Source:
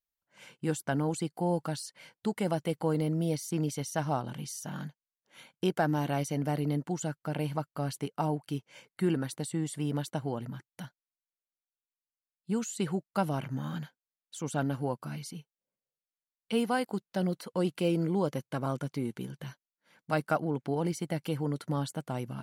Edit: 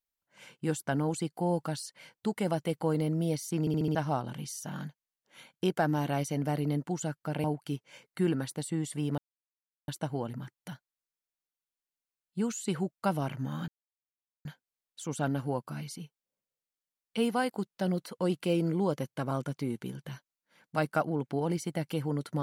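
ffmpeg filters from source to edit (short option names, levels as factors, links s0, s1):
-filter_complex "[0:a]asplit=9[s0][s1][s2][s3][s4][s5][s6][s7][s8];[s0]atrim=end=3.672[s9];[s1]atrim=start=3.598:end=3.672[s10];[s2]atrim=start=3.598:end=3.672[s11];[s3]atrim=start=3.598:end=3.672[s12];[s4]atrim=start=3.598:end=3.672[s13];[s5]atrim=start=3.948:end=7.442[s14];[s6]atrim=start=8.258:end=10,asetpts=PTS-STARTPTS,afade=t=out:st=1.738:d=0.004:c=hsin,apad=pad_dur=0.7[s15];[s7]atrim=start=10:end=13.8,asetpts=PTS-STARTPTS,afade=t=in:d=0.004:c=hsin,afade=t=out:st=3.796:d=0.004:c=hsin,apad=pad_dur=0.77[s16];[s8]atrim=start=13.8,asetpts=PTS-STARTPTS,afade=t=in:d=0.004:c=hsin[s17];[s9][s10]acrossfade=d=0.004:c1=hsin:c2=hsin[s18];[s18][s11]acrossfade=d=0.004:c1=hsin:c2=hsin[s19];[s19][s12]acrossfade=d=0.004:c1=hsin:c2=hsin[s20];[s20][s13]acrossfade=d=0.004:c1=hsin:c2=hsin[s21];[s21][s14]acrossfade=d=0.004:c1=hsin:c2=hsin[s22];[s15][s16][s17]concat=n=3:v=0:a=1[s23];[s22][s23]acrossfade=d=0.004:c1=hsin:c2=hsin"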